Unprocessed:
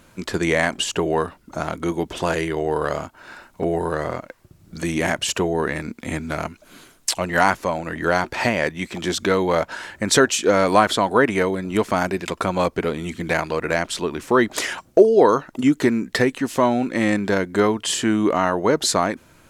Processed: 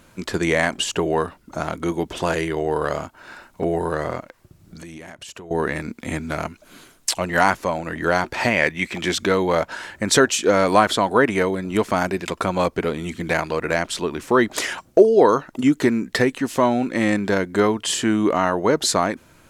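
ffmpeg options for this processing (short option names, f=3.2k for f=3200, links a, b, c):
-filter_complex "[0:a]asettb=1/sr,asplit=3[a][b][c];[a]atrim=end=4.204[d];[b]atrim=start=4.2:end=5.51,asetpts=PTS-STARTPTS,afade=t=in:d=0.004:c=qsin,afade=t=out:st=1.306:d=0.004:c=qsin,acompressor=threshold=-36dB:ratio=6:attack=3.2:release=140:knee=1:detection=peak[e];[c]atrim=start=5.506[f];[d][e]acrossfade=d=0.004:c1=hsin:c2=qsin[g];[g][f]acrossfade=d=0.004:c1=qsin:c2=hsin,asettb=1/sr,asplit=3[h][i][j];[h]atrim=end=8.514[k];[i]atrim=start=8.51:end=9.22,asetpts=PTS-STARTPTS,afade=t=in:d=0.004:c=qsin,afade=t=out:st=0.706:d=0.004:c=qsin,equalizer=f=2.2k:w=1.7:g=7.5[l];[j]atrim=start=9.216[m];[k][l]acrossfade=d=0.004:c1=hsin:c2=qsin[n];[n][m]acrossfade=d=0.004:c1=qsin:c2=hsin"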